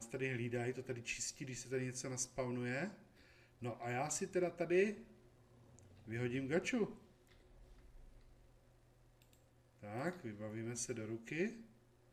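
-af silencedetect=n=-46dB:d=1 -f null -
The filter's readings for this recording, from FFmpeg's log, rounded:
silence_start: 6.93
silence_end: 9.83 | silence_duration: 2.91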